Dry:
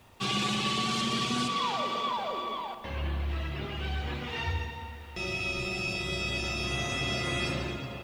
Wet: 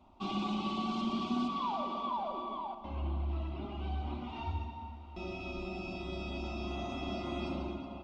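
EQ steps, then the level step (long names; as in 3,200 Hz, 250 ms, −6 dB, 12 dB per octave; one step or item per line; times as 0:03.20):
head-to-tape spacing loss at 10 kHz 34 dB
phaser with its sweep stopped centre 470 Hz, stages 6
+1.5 dB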